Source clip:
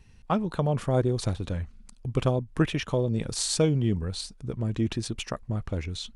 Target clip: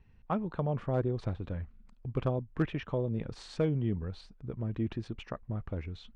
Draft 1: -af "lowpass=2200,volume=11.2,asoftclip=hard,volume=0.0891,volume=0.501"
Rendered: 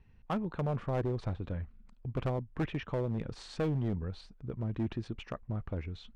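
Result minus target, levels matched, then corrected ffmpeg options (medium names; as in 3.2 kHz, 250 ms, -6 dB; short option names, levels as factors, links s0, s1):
overload inside the chain: distortion +16 dB
-af "lowpass=2200,volume=5.31,asoftclip=hard,volume=0.188,volume=0.501"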